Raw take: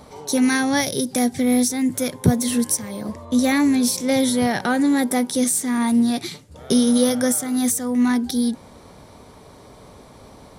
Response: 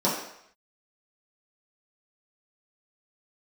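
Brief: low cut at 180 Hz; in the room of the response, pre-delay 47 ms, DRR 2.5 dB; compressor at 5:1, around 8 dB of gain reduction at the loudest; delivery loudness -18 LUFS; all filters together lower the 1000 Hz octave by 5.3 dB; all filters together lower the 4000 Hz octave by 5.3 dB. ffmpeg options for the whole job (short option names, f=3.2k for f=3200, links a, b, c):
-filter_complex "[0:a]highpass=180,equalizer=f=1k:t=o:g=-7.5,equalizer=f=4k:t=o:g=-6.5,acompressor=threshold=-23dB:ratio=5,asplit=2[a][b];[1:a]atrim=start_sample=2205,adelay=47[c];[b][c]afir=irnorm=-1:irlink=0,volume=-16.5dB[d];[a][d]amix=inputs=2:normalize=0,volume=6dB"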